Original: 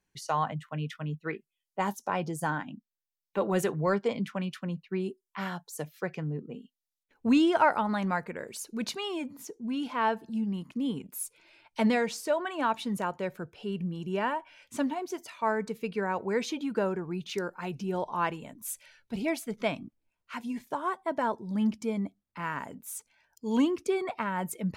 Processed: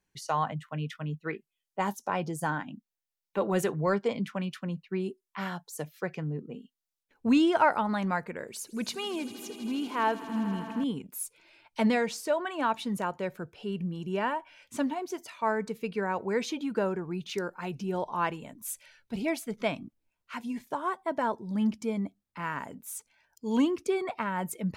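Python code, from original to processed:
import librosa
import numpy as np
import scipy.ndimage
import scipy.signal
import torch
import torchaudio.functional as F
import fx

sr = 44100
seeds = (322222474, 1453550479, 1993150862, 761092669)

y = fx.echo_swell(x, sr, ms=80, loudest=5, wet_db=-18.0, at=(8.47, 10.84))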